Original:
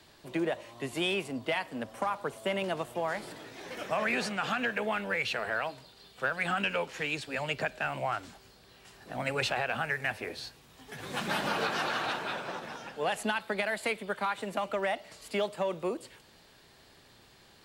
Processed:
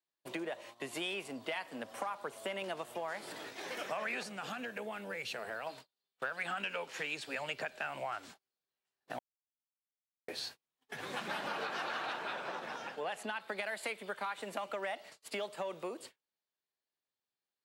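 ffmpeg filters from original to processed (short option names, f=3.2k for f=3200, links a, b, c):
-filter_complex "[0:a]asettb=1/sr,asplit=3[a][b][c];[a]atrim=end=4.234[d];[b]atrim=start=4.23:end=5.67,asetpts=PTS-STARTPTS,afade=t=in:d=0.004:c=qsin,afade=t=out:st=1.436:d=0.004:c=qsin,equalizer=f=1.8k:w=0.33:g=-10[e];[c]atrim=start=5.666[f];[d][e]acrossfade=d=0.004:c1=hsin:c2=qsin[g];[g][f]acrossfade=d=0.004:c1=qsin:c2=hsin,asettb=1/sr,asplit=3[h][i][j];[h]atrim=end=10.894[k];[i]atrim=start=10.89:end=13.49,asetpts=PTS-STARTPTS,afade=t=in:d=0.004:c=qsin,afade=t=out:st=2.596:d=0.004:c=qsin,highshelf=f=4.5k:g=-7.5[l];[j]atrim=start=13.486[m];[k][l]acrossfade=d=0.004:c1=hsin:c2=qsin[n];[n][m]acrossfade=d=0.004:c1=qsin:c2=hsin,asplit=3[o][p][q];[o]atrim=end=9.19,asetpts=PTS-STARTPTS,afade=t=out:st=9.186:d=0.004:c=hsin[r];[p]atrim=start=9.19:end=10.28,asetpts=PTS-STARTPTS,volume=0[s];[q]atrim=start=10.28,asetpts=PTS-STARTPTS,afade=t=in:d=0.004:c=hsin[t];[r][s][t]concat=n=3:v=0:a=1,agate=range=-40dB:threshold=-47dB:ratio=16:detection=peak,acompressor=threshold=-40dB:ratio=3,highpass=f=420:p=1,volume=3dB"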